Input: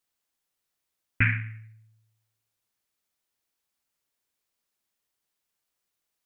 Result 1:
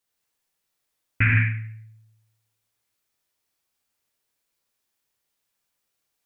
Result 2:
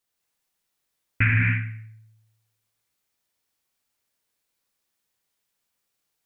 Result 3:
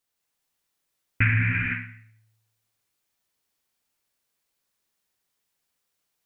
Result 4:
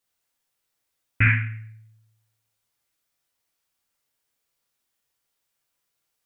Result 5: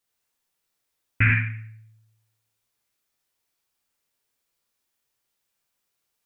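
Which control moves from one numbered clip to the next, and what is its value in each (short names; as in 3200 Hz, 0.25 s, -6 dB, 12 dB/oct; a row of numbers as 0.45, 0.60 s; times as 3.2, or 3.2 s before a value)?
non-linear reverb, gate: 190, 310, 530, 90, 130 ms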